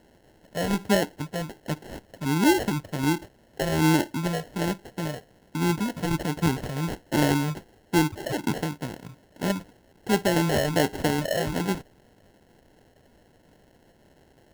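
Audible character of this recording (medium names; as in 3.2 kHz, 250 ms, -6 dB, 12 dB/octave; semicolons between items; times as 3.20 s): a quantiser's noise floor 10-bit, dither triangular; phasing stages 8, 1.3 Hz, lowest notch 310–1900 Hz; aliases and images of a low sample rate 1.2 kHz, jitter 0%; Opus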